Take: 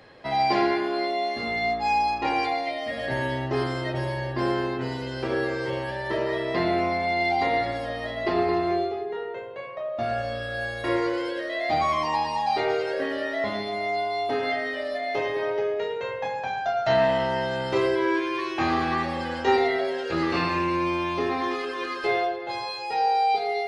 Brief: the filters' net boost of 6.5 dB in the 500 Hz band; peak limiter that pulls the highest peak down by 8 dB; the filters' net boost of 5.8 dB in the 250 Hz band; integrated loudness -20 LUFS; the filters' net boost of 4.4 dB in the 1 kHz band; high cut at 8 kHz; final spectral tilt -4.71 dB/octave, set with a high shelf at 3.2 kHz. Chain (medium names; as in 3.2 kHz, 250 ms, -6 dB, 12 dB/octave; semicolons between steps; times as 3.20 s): low-pass 8 kHz; peaking EQ 250 Hz +4.5 dB; peaking EQ 500 Hz +7 dB; peaking EQ 1 kHz +3 dB; treble shelf 3.2 kHz -7.5 dB; trim +2.5 dB; peak limiter -10.5 dBFS